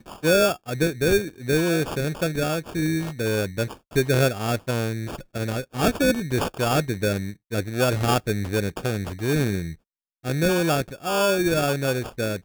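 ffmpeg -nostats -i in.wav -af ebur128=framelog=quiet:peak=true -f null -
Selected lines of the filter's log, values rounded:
Integrated loudness:
  I:         -23.9 LUFS
  Threshold: -34.0 LUFS
Loudness range:
  LRA:         1.5 LU
  Threshold: -44.5 LUFS
  LRA low:   -25.3 LUFS
  LRA high:  -23.8 LUFS
True peak:
  Peak:       -8.5 dBFS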